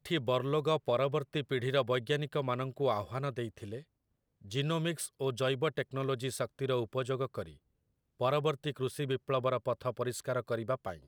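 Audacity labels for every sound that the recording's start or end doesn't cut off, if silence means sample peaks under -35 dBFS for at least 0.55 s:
4.520000	7.430000	sound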